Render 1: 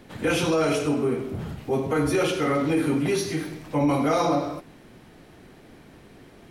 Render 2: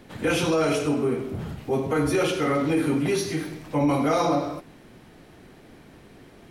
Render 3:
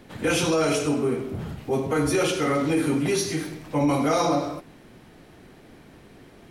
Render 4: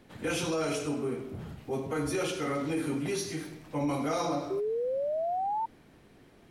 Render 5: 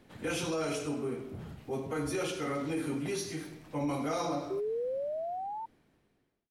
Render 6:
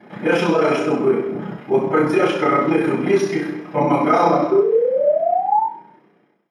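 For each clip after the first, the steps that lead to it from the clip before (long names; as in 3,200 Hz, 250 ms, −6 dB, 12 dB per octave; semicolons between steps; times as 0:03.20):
no processing that can be heard
dynamic equaliser 7,300 Hz, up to +6 dB, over −49 dBFS, Q 0.84
sound drawn into the spectrogram rise, 0:04.50–0:05.66, 380–920 Hz −22 dBFS; level −8.5 dB
fade-out on the ending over 1.72 s; level −2.5 dB
amplitude modulation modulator 31 Hz, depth 75%; convolution reverb RT60 0.50 s, pre-delay 3 ms, DRR −20.5 dB; level +2.5 dB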